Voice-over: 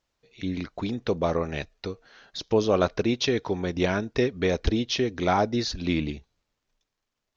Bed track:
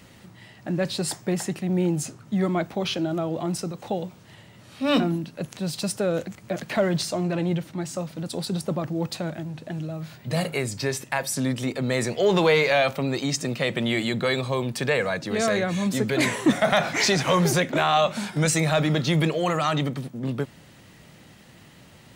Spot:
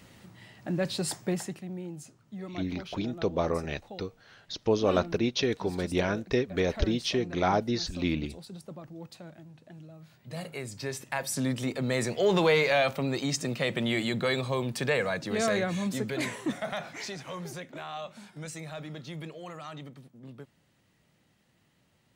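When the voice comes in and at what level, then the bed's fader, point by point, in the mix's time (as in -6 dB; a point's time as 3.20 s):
2.15 s, -3.0 dB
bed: 1.30 s -4 dB
1.82 s -16.5 dB
10.00 s -16.5 dB
11.38 s -4 dB
15.62 s -4 dB
17.22 s -18.5 dB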